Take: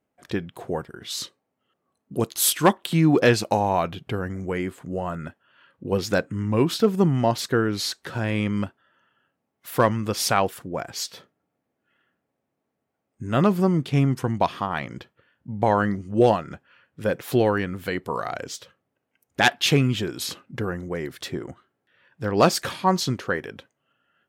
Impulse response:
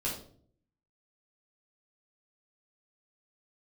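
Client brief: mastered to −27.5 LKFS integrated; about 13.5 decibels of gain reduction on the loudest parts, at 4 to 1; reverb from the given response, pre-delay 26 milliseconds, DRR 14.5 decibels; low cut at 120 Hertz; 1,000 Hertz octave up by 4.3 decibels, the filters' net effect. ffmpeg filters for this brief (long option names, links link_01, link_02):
-filter_complex "[0:a]highpass=120,equalizer=frequency=1000:width_type=o:gain=5.5,acompressor=threshold=-27dB:ratio=4,asplit=2[link_01][link_02];[1:a]atrim=start_sample=2205,adelay=26[link_03];[link_02][link_03]afir=irnorm=-1:irlink=0,volume=-19dB[link_04];[link_01][link_04]amix=inputs=2:normalize=0,volume=4dB"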